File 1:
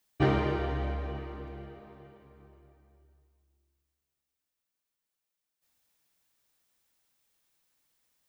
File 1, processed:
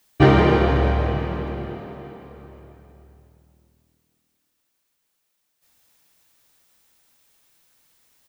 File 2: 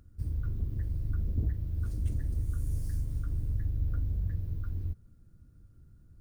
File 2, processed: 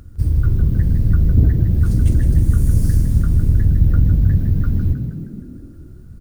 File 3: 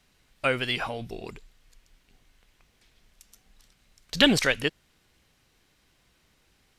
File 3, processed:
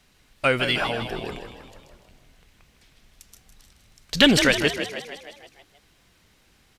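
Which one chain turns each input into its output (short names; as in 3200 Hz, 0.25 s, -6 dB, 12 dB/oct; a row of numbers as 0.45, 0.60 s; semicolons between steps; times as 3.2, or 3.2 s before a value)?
in parallel at -4.5 dB: soft clip -16.5 dBFS; on the sum: frequency-shifting echo 0.157 s, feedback 58%, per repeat +40 Hz, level -9 dB; normalise peaks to -2 dBFS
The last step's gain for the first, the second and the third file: +8.0, +13.0, +1.0 dB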